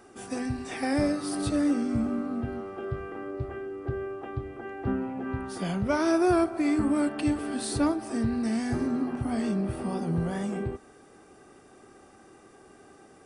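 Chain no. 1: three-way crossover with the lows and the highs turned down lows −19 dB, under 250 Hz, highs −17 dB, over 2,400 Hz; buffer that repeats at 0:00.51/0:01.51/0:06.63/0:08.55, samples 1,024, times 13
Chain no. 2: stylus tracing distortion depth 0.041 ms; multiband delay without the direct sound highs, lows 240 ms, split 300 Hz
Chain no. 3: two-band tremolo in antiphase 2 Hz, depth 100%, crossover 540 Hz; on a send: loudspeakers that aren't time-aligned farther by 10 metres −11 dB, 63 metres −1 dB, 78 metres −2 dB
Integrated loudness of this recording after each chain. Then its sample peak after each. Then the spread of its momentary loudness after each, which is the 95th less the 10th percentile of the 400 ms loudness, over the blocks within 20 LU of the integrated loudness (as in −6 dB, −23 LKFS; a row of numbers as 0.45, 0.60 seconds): −32.5, −31.0, −30.5 LKFS; −15.0, −14.5, −14.0 dBFS; 11, 10, 9 LU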